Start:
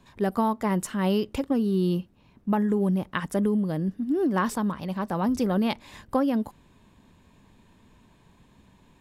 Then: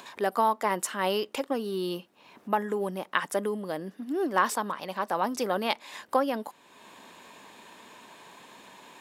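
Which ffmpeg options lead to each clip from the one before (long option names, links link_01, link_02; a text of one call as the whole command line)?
ffmpeg -i in.wav -filter_complex "[0:a]highpass=520,asplit=2[link_01][link_02];[link_02]acompressor=mode=upward:threshold=-34dB:ratio=2.5,volume=-1dB[link_03];[link_01][link_03]amix=inputs=2:normalize=0,volume=-2dB" out.wav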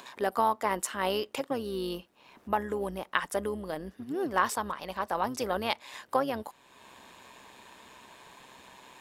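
ffmpeg -i in.wav -af "tremolo=f=130:d=0.4,asubboost=boost=3:cutoff=110" out.wav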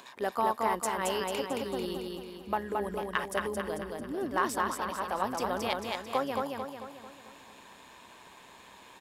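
ffmpeg -i in.wav -filter_complex "[0:a]asplit=2[link_01][link_02];[link_02]asoftclip=type=hard:threshold=-16.5dB,volume=-8.5dB[link_03];[link_01][link_03]amix=inputs=2:normalize=0,aecho=1:1:222|444|666|888|1110|1332|1554:0.708|0.354|0.177|0.0885|0.0442|0.0221|0.0111,volume=-5.5dB" out.wav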